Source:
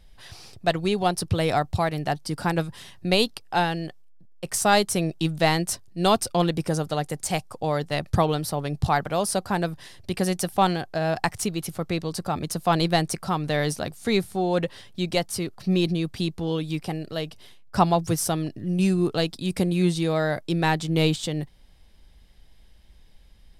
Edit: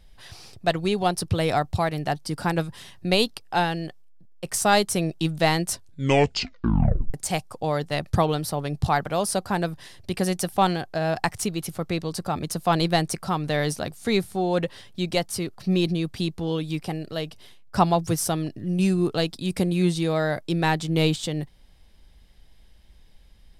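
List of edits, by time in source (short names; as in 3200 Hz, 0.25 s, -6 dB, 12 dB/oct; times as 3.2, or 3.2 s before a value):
5.73 tape stop 1.41 s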